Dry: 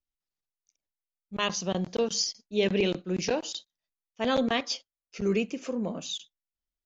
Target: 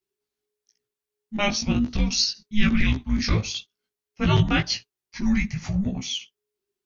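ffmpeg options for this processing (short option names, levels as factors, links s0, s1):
-af "afreqshift=-420,flanger=delay=15.5:depth=3.2:speed=1,volume=2.82"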